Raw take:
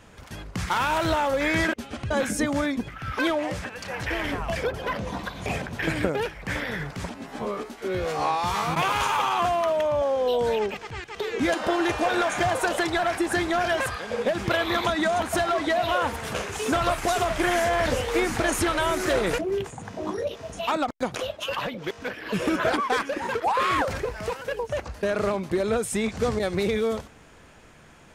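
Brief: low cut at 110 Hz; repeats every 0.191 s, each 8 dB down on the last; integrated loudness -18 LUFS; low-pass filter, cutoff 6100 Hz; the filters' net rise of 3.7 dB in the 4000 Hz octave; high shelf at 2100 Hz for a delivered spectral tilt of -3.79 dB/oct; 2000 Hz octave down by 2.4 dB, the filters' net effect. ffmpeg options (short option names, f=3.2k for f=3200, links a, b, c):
-af "highpass=110,lowpass=6.1k,equalizer=f=2k:t=o:g=-6.5,highshelf=f=2.1k:g=5,equalizer=f=4k:t=o:g=3,aecho=1:1:191|382|573|764|955:0.398|0.159|0.0637|0.0255|0.0102,volume=7.5dB"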